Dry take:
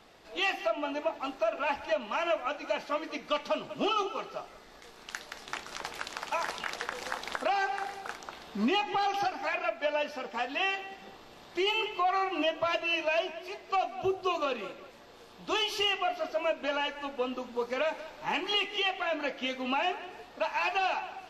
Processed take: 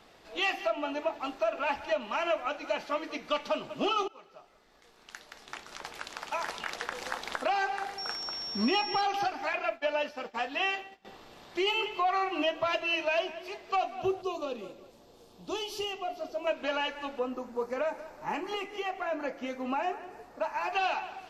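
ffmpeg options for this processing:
-filter_complex "[0:a]asettb=1/sr,asplit=3[s0][s1][s2];[s0]atrim=end=7.984[s3];[s1]atrim=start=7.98:end=9.01,asetpts=PTS-STARTPTS,afade=t=in:d=0.004:c=qsin,afade=t=out:st=1.026:d=0.004:c=qsin,aeval=exprs='val(0)+0.0178*sin(2*PI*5500*n/s)':c=same[s4];[s2]atrim=start=9.006[s5];[s3][s4]acrossfade=d=0.004:c1=hsin:c2=qsin[s6];[s6][s5]acrossfade=d=0.004:c1=qsin:c2=hsin,asettb=1/sr,asplit=3[s7][s8][s9];[s7]atrim=end=9.534[s10];[s8]atrim=start=9.53:end=11.05,asetpts=PTS-STARTPTS,afade=t=in:d=0.004:c=qsin,afade=t=out:st=1.516:d=0.004:c=qsin,agate=range=0.0224:threshold=0.0126:ratio=3:release=100:detection=peak[s11];[s9]atrim=start=11.046[s12];[s10][s11]acrossfade=d=0.004:c1=hsin:c2=qsin[s13];[s13][s12]acrossfade=d=0.004:c1=qsin:c2=hsin,asettb=1/sr,asplit=3[s14][s15][s16];[s14]atrim=end=14.224[s17];[s15]atrim=start=14.22:end=16.47,asetpts=PTS-STARTPTS,afade=t=in:d=0.004:c=qsin,afade=t=out:st=2.246:d=0.004:c=qsin,equalizer=f=1800:t=o:w=1.8:g=-14[s18];[s16]atrim=start=16.466[s19];[s17][s18]acrossfade=d=0.004:c1=hsin:c2=qsin[s20];[s20][s19]acrossfade=d=0.004:c1=qsin:c2=hsin,asettb=1/sr,asplit=3[s21][s22][s23];[s21]atrim=end=17.194[s24];[s22]atrim=start=17.19:end=20.73,asetpts=PTS-STARTPTS,afade=t=in:d=0.004:c=qsin,afade=t=out:st=3.536:d=0.004:c=qsin,equalizer=f=3300:w=1.3:g=-14.5[s25];[s23]atrim=start=20.726[s26];[s24][s25]acrossfade=d=0.004:c1=hsin:c2=qsin[s27];[s27][s26]acrossfade=d=0.004:c1=qsin:c2=hsin,asplit=2[s28][s29];[s28]atrim=end=4.08,asetpts=PTS-STARTPTS,afade=t=out:st=4.076:d=0.004:c=hsin:silence=0.125893[s30];[s29]atrim=start=4.08,asetpts=PTS-STARTPTS,afade=t=in:d=2.88:silence=0.125893[s31];[s30][s31]concat=n=2:v=0:a=1"

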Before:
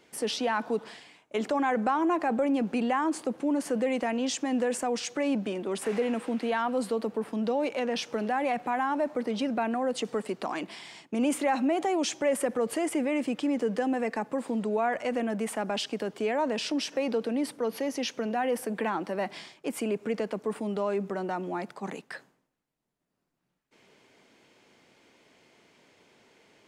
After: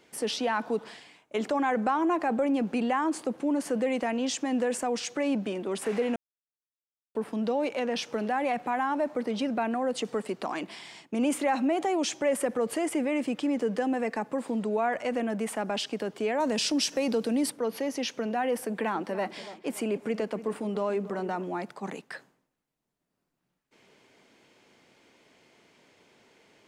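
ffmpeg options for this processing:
-filter_complex "[0:a]asettb=1/sr,asplit=3[s0][s1][s2];[s0]atrim=end=16.404[s3];[s1]atrim=start=16.4:end=17.5,asetpts=PTS-STARTPTS,afade=t=in:d=0.004:c=qsin,afade=t=out:st=1.096:d=0.004:c=qsin,bass=f=250:g=6,treble=f=4000:g=10[s4];[s2]atrim=start=17.496[s5];[s3][s4]acrossfade=d=0.004:c1=hsin:c2=qsin[s6];[s6][s5]acrossfade=d=0.004:c1=qsin:c2=hsin,asettb=1/sr,asplit=3[s7][s8][s9];[s7]atrim=end=18.594[s10];[s8]atrim=start=18.59:end=21.44,asetpts=PTS-STARTPTS,afade=t=in:d=0.004:c=qsin,afade=t=out:st=2.846:d=0.004:c=qsin,asplit=2[s11][s12];[s12]adelay=286,lowpass=f=2000:p=1,volume=0.2,asplit=2[s13][s14];[s14]adelay=286,lowpass=f=2000:p=1,volume=0.5,asplit=2[s15][s16];[s16]adelay=286,lowpass=f=2000:p=1,volume=0.5,asplit=2[s17][s18];[s18]adelay=286,lowpass=f=2000:p=1,volume=0.5,asplit=2[s19][s20];[s20]adelay=286,lowpass=f=2000:p=1,volume=0.5[s21];[s11][s13][s15][s17][s19][s21]amix=inputs=6:normalize=0,atrim=end_sample=125685[s22];[s9]atrim=start=21.436[s23];[s10][s22]acrossfade=d=0.004:c1=hsin:c2=qsin[s24];[s24][s23]acrossfade=d=0.004:c1=qsin:c2=hsin,asplit=3[s25][s26][s27];[s25]atrim=end=6.16,asetpts=PTS-STARTPTS,afade=t=out:st=6.156:d=0.004:c=hsin[s28];[s26]atrim=start=6.16:end=7.15,asetpts=PTS-STARTPTS,volume=0[s29];[s27]atrim=start=7.15,asetpts=PTS-STARTPTS,afade=t=in:d=0.004:c=hsin[s30];[s28][s29][s30]concat=n=3:v=0:a=1"

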